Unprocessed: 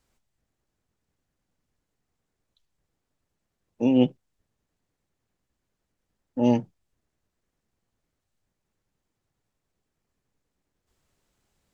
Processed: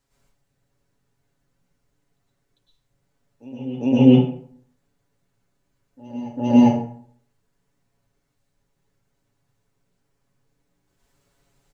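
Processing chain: comb 7.2 ms; reverse echo 0.4 s -18.5 dB; plate-style reverb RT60 0.59 s, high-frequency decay 0.65×, pre-delay 95 ms, DRR -8 dB; gain -3 dB

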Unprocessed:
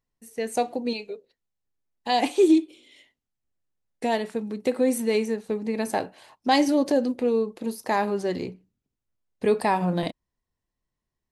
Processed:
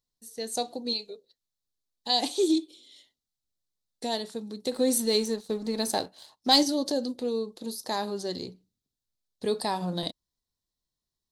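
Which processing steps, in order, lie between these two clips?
resonant high shelf 3100 Hz +8 dB, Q 3; 4.72–6.63 sample leveller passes 1; gain -6.5 dB

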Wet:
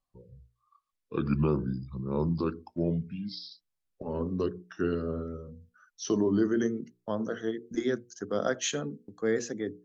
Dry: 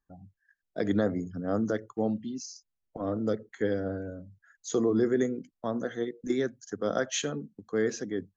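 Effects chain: speed glide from 66% -> 104%; notches 60/120/180/240/300/360/420/480 Hz

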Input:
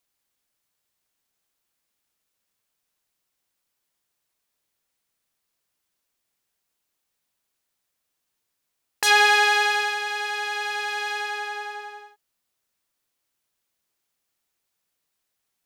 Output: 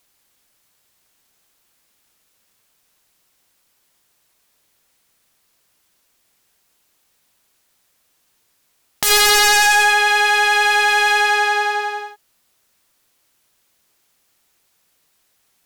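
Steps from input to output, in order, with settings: sine folder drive 13 dB, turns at -4.5 dBFS; gain -2 dB

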